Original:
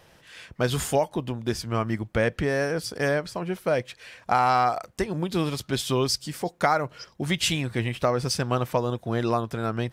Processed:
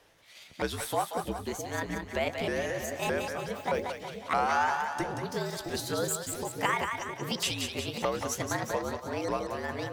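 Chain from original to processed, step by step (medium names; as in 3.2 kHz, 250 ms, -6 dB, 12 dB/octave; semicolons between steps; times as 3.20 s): sawtooth pitch modulation +8.5 st, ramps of 619 ms; peaking EQ 85 Hz -15 dB 1.4 oct; two-band feedback delay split 630 Hz, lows 660 ms, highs 183 ms, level -5 dB; frequency shift -63 Hz; trim -5.5 dB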